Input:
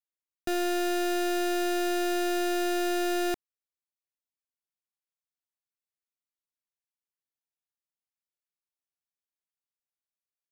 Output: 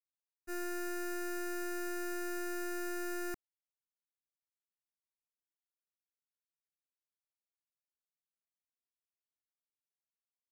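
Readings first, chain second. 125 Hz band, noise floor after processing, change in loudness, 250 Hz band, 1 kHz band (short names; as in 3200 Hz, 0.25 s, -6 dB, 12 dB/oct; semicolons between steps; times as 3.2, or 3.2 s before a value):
n/a, under -85 dBFS, -11.0 dB, -11.5 dB, -13.0 dB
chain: fixed phaser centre 1400 Hz, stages 4; expander -24 dBFS; gain +2.5 dB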